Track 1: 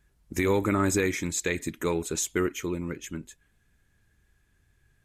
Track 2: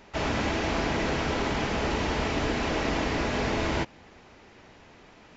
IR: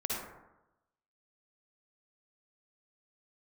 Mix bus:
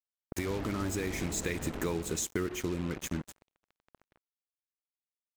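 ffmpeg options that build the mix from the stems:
-filter_complex "[0:a]highpass=45,lowshelf=frequency=200:gain=5.5,dynaudnorm=framelen=490:gausssize=5:maxgain=13.5dB,volume=-5dB,asplit=2[link_01][link_02];[link_02]volume=-21.5dB[link_03];[1:a]tiltshelf=frequency=680:gain=8.5,adelay=350,volume=-9.5dB,afade=type=out:start_time=1.98:duration=0.3:silence=0.251189,asplit=2[link_04][link_05];[link_05]volume=-20dB[link_06];[2:a]atrim=start_sample=2205[link_07];[link_03][link_06]amix=inputs=2:normalize=0[link_08];[link_08][link_07]afir=irnorm=-1:irlink=0[link_09];[link_01][link_04][link_09]amix=inputs=3:normalize=0,acrusher=bits=4:mix=0:aa=0.5,acompressor=threshold=-32dB:ratio=4"

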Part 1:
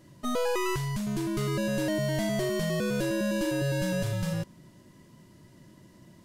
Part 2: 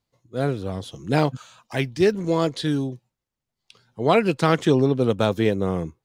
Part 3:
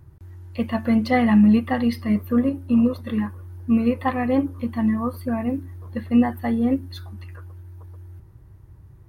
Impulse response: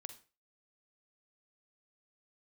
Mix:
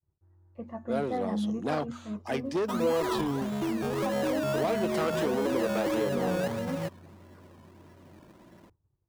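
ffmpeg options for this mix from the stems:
-filter_complex "[0:a]highpass=170,acrusher=samples=17:mix=1:aa=0.000001:lfo=1:lforange=10.2:lforate=1.6,adelay=2450,volume=-1.5dB[link_01];[1:a]asoftclip=type=tanh:threshold=-20dB,highpass=frequency=160:width=0.5412,highpass=frequency=160:width=1.3066,adelay=550,volume=-6.5dB[link_02];[2:a]lowpass=1300,bandreject=frequency=60:width_type=h:width=6,bandreject=frequency=120:width_type=h:width=6,bandreject=frequency=180:width_type=h:width=6,bandreject=frequency=240:width_type=h:width=6,volume=-18.5dB,asplit=2[link_03][link_04];[link_04]apad=whole_len=383484[link_05];[link_01][link_05]sidechaincompress=threshold=-39dB:ratio=8:attack=16:release=180[link_06];[link_06][link_02]amix=inputs=2:normalize=0,acompressor=threshold=-29dB:ratio=6,volume=0dB[link_07];[link_03][link_07]amix=inputs=2:normalize=0,agate=range=-33dB:threshold=-56dB:ratio=3:detection=peak,equalizer=frequency=660:width=0.51:gain=7"

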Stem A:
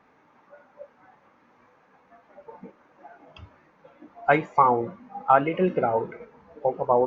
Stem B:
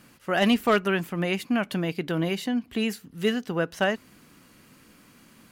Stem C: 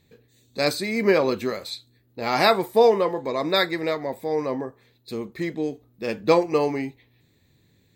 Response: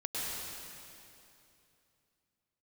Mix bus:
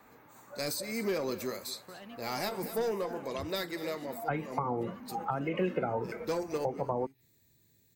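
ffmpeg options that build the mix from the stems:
-filter_complex "[0:a]acrossover=split=250|1000[link_01][link_02][link_03];[link_01]acompressor=threshold=-39dB:ratio=4[link_04];[link_02]acompressor=threshold=-30dB:ratio=4[link_05];[link_03]acompressor=threshold=-30dB:ratio=4[link_06];[link_04][link_05][link_06]amix=inputs=3:normalize=0,volume=1.5dB,asplit=2[link_07][link_08];[1:a]acompressor=threshold=-31dB:ratio=6,adelay=1600,volume=-16.5dB[link_09];[2:a]aexciter=amount=2.2:drive=9:freq=5000,asoftclip=type=tanh:threshold=-14dB,volume=-9.5dB,asplit=2[link_10][link_11];[link_11]volume=-17.5dB[link_12];[link_08]apad=whole_len=350978[link_13];[link_10][link_13]sidechaincompress=threshold=-44dB:ratio=8:attack=32:release=141[link_14];[link_12]aecho=0:1:233:1[link_15];[link_07][link_09][link_14][link_15]amix=inputs=4:normalize=0,acrossover=split=370[link_16][link_17];[link_17]acompressor=threshold=-32dB:ratio=5[link_18];[link_16][link_18]amix=inputs=2:normalize=0"

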